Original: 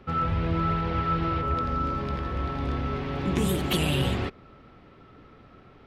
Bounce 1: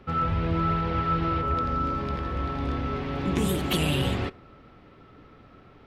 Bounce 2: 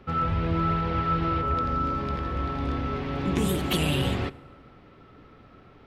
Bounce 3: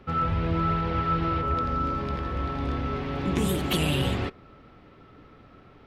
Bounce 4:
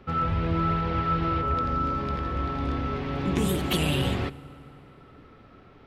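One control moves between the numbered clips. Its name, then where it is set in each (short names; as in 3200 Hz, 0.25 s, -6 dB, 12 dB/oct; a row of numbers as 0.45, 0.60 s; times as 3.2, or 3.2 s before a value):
FDN reverb, RT60: 0.65, 1.8, 0.31, 4 s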